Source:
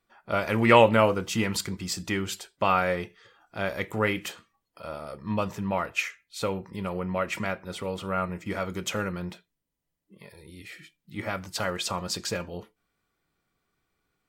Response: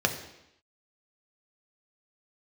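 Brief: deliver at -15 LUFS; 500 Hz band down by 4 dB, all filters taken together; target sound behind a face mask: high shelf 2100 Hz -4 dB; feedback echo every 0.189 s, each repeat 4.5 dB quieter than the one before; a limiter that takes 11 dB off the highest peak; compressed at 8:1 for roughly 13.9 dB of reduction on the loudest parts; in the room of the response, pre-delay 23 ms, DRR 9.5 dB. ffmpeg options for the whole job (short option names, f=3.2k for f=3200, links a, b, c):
-filter_complex "[0:a]equalizer=f=500:t=o:g=-4.5,acompressor=threshold=-28dB:ratio=8,alimiter=level_in=3.5dB:limit=-24dB:level=0:latency=1,volume=-3.5dB,aecho=1:1:189|378|567|756|945|1134|1323|1512|1701:0.596|0.357|0.214|0.129|0.0772|0.0463|0.0278|0.0167|0.01,asplit=2[a][b];[1:a]atrim=start_sample=2205,adelay=23[c];[b][c]afir=irnorm=-1:irlink=0,volume=-21dB[d];[a][d]amix=inputs=2:normalize=0,highshelf=f=2.1k:g=-4,volume=21.5dB"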